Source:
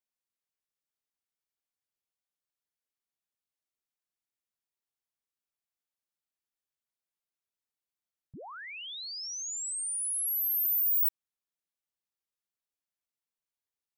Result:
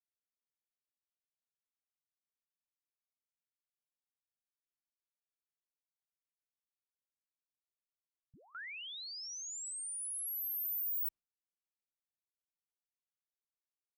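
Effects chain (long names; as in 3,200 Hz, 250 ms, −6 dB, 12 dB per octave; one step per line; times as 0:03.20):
noise gate with hold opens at −41 dBFS
spectral tilt −2.5 dB per octave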